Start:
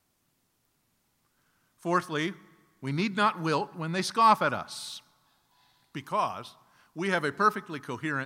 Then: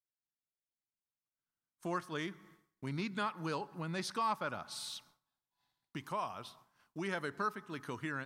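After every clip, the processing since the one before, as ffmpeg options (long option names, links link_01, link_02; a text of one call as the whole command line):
ffmpeg -i in.wav -af "agate=range=-33dB:threshold=-54dB:ratio=3:detection=peak,acompressor=threshold=-37dB:ratio=2,volume=-3dB" out.wav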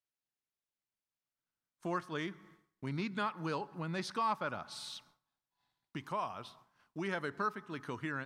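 ffmpeg -i in.wav -af "highshelf=frequency=7600:gain=-10.5,volume=1dB" out.wav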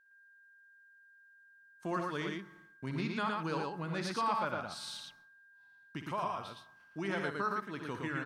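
ffmpeg -i in.wav -af "aeval=exprs='val(0)+0.000562*sin(2*PI*1600*n/s)':channel_layout=same,aecho=1:1:61.22|113.7:0.355|0.708" out.wav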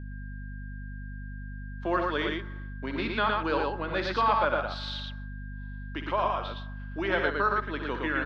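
ffmpeg -i in.wav -af "highpass=frequency=250:width=0.5412,highpass=frequency=250:width=1.3066,equalizer=frequency=570:width_type=q:width=4:gain=5,equalizer=frequency=1600:width_type=q:width=4:gain=3,equalizer=frequency=3400:width_type=q:width=4:gain=4,lowpass=frequency=4100:width=0.5412,lowpass=frequency=4100:width=1.3066,aeval=exprs='val(0)+0.00562*(sin(2*PI*50*n/s)+sin(2*PI*2*50*n/s)/2+sin(2*PI*3*50*n/s)/3+sin(2*PI*4*50*n/s)/4+sin(2*PI*5*50*n/s)/5)':channel_layout=same,volume=7.5dB" out.wav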